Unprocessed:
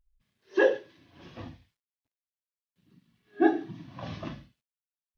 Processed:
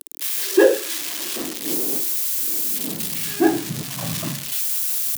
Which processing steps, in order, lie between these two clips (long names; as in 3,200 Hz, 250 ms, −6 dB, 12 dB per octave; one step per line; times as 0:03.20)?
spike at every zero crossing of −19 dBFS
0:01.35–0:03.83: wind on the microphone 270 Hz −43 dBFS
in parallel at −7.5 dB: hard clipping −25 dBFS, distortion −8 dB
on the sum: high-pass filter sweep 320 Hz → 140 Hz, 0:02.61–0:03.21
level +2.5 dB